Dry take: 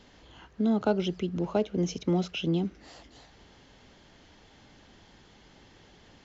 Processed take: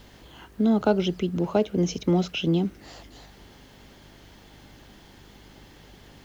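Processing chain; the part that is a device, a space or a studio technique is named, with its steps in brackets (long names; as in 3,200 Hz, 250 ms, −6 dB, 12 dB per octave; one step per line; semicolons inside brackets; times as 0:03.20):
video cassette with head-switching buzz (hum with harmonics 50 Hz, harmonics 8, −59 dBFS −4 dB per octave; white noise bed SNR 38 dB)
level +4.5 dB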